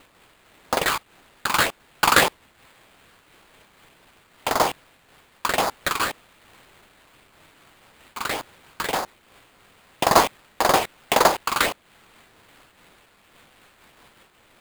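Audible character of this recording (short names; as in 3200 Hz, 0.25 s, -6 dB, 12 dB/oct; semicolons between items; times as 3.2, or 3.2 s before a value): a quantiser's noise floor 10-bit, dither triangular; phasing stages 12, 1.8 Hz, lowest notch 560–2800 Hz; aliases and images of a low sample rate 5800 Hz, jitter 20%; noise-modulated level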